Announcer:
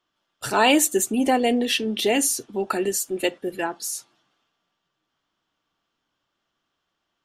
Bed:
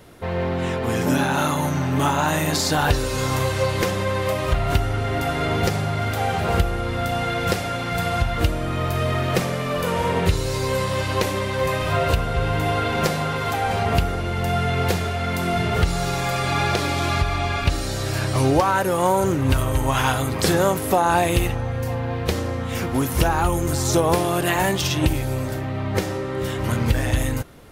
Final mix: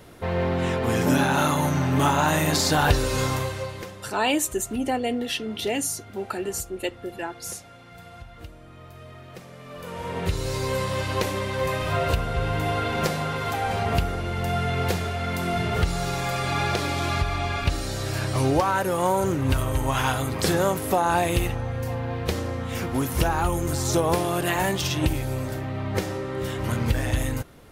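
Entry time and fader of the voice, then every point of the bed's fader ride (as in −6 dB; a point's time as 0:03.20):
3.60 s, −5.5 dB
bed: 0:03.21 −0.5 dB
0:04.12 −21.5 dB
0:09.40 −21.5 dB
0:10.47 −3.5 dB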